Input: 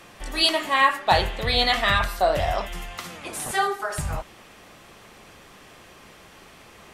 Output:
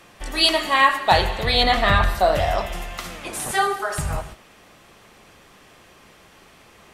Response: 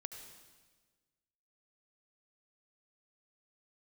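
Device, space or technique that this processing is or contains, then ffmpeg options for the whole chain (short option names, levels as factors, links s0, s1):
keyed gated reverb: -filter_complex "[0:a]asettb=1/sr,asplit=3[s0][s1][s2];[s0]atrim=end=1.634[s3];[s1]atrim=start=1.63:end=2.15,asetpts=PTS-STARTPTS,afade=t=in:d=0.004:c=qsin,afade=t=out:st=0.516:d=0.004:c=qsin,tiltshelf=f=1300:g=5[s4];[s2]atrim=start=2.146[s5];[s3][s4]acrossfade=d=0.004:c1=hsin:c2=qsin[s6];[s6][s5]acrossfade=d=0.004:c1=qsin:c2=hsin,asplit=3[s7][s8][s9];[1:a]atrim=start_sample=2205[s10];[s8][s10]afir=irnorm=-1:irlink=0[s11];[s9]apad=whole_len=306004[s12];[s11][s12]sidechaingate=range=0.0224:threshold=0.00794:ratio=16:detection=peak,volume=1.19[s13];[s7][s13]amix=inputs=2:normalize=0,volume=0.794"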